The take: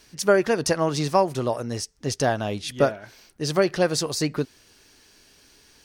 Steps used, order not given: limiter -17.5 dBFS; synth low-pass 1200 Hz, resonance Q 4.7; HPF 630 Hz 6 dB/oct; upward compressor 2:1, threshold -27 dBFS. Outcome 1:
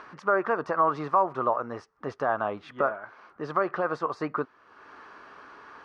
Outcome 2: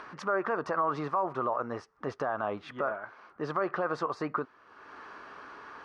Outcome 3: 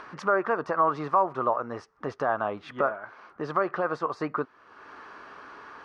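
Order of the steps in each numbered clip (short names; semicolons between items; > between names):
upward compressor > HPF > limiter > synth low-pass; synth low-pass > upward compressor > limiter > HPF; HPF > limiter > synth low-pass > upward compressor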